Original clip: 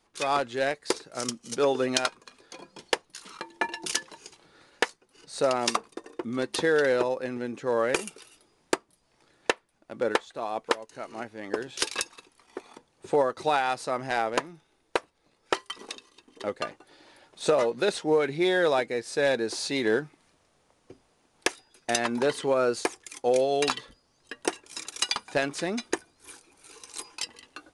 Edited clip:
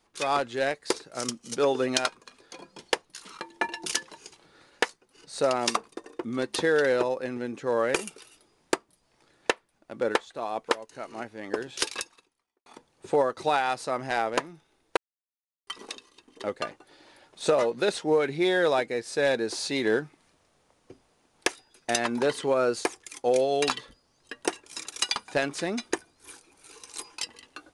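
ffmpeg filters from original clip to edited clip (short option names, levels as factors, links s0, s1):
-filter_complex "[0:a]asplit=4[s0][s1][s2][s3];[s0]atrim=end=12.66,asetpts=PTS-STARTPTS,afade=t=out:st=11.84:d=0.82:c=qua[s4];[s1]atrim=start=12.66:end=14.97,asetpts=PTS-STARTPTS,afade=t=in:d=0.004:c=hsin,afade=t=out:st=2.306:d=0.004:c=hsin[s5];[s2]atrim=start=14.97:end=15.67,asetpts=PTS-STARTPTS,volume=0[s6];[s3]atrim=start=15.67,asetpts=PTS-STARTPTS,afade=t=in:d=0.004:c=hsin[s7];[s4][s5][s6][s7]concat=n=4:v=0:a=1"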